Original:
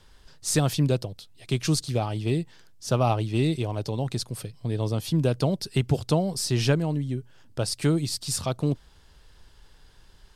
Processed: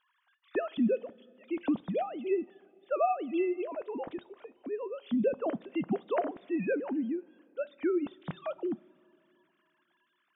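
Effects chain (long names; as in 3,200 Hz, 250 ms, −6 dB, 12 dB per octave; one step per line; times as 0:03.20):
three sine waves on the formant tracks
high-shelf EQ 2,600 Hz −9.5 dB
coupled-rooms reverb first 0.28 s, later 3 s, from −18 dB, DRR 16.5 dB
level −6.5 dB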